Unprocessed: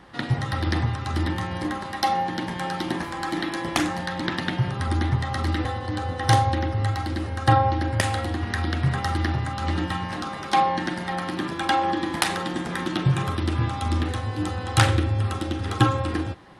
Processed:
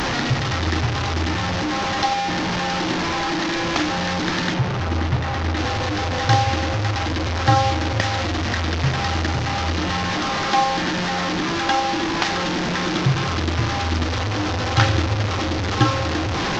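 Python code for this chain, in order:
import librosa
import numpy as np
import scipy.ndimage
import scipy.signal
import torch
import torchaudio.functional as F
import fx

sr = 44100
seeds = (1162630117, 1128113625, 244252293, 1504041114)

y = fx.delta_mod(x, sr, bps=32000, step_db=-18.0)
y = fx.high_shelf(y, sr, hz=3100.0, db=-9.0, at=(4.54, 5.57))
y = y * 10.0 ** (1.5 / 20.0)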